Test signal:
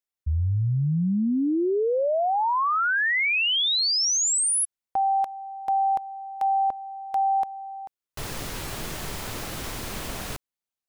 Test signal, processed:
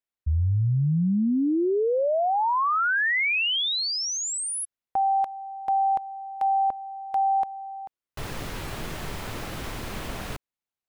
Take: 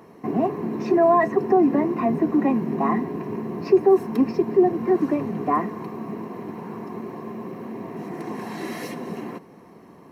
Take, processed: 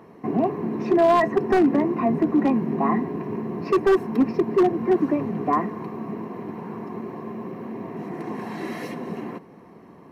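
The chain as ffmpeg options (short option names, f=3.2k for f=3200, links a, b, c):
-af "bass=f=250:g=1,treble=f=4k:g=-7,aeval=exprs='0.266*(abs(mod(val(0)/0.266+3,4)-2)-1)':c=same"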